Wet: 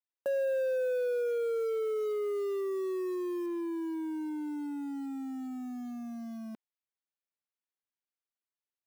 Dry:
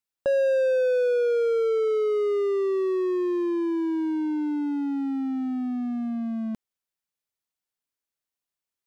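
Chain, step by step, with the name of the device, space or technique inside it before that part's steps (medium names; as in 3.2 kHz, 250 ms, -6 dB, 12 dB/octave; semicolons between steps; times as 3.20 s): early digital voice recorder (band-pass 250–3400 Hz; block-companded coder 5-bit); trim -8 dB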